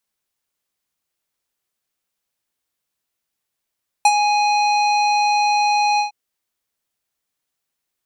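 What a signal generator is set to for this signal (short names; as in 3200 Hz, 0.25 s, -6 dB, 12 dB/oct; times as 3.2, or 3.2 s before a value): synth note square G#5 24 dB/oct, low-pass 5200 Hz, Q 1.2, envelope 1 oct, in 0.14 s, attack 3.9 ms, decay 0.05 s, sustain -7.5 dB, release 0.12 s, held 1.94 s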